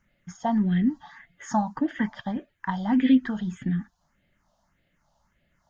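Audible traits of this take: phasing stages 4, 1.7 Hz, lowest notch 350–1000 Hz

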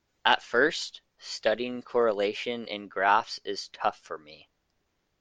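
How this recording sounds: noise floor -76 dBFS; spectral tilt -2.5 dB/oct

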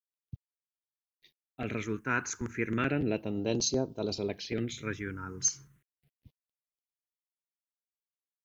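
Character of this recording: a quantiser's noise floor 12-bit, dither none; phasing stages 4, 0.33 Hz, lowest notch 620–1900 Hz

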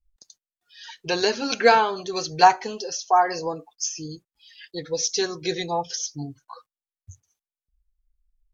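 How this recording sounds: noise floor -96 dBFS; spectral tilt -2.5 dB/oct

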